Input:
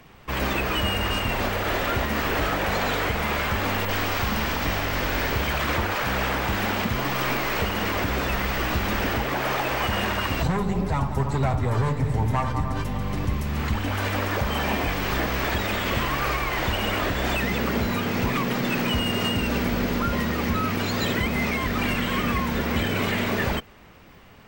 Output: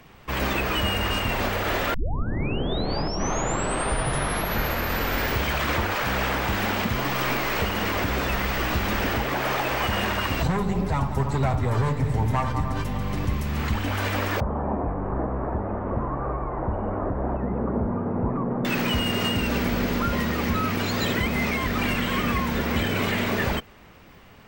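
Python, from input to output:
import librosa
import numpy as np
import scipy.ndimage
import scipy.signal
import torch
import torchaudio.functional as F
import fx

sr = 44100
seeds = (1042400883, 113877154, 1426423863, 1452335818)

y = fx.cheby2_lowpass(x, sr, hz=5900.0, order=4, stop_db=80, at=(14.4, 18.65))
y = fx.edit(y, sr, fx.tape_start(start_s=1.94, length_s=3.44), tone=tone)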